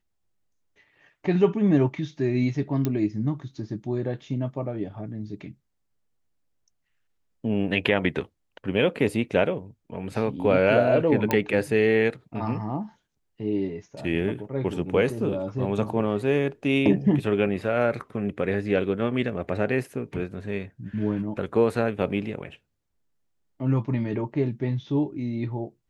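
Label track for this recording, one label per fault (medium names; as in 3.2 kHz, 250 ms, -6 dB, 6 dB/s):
2.850000	2.850000	pop -13 dBFS
11.310000	11.310000	pop -9 dBFS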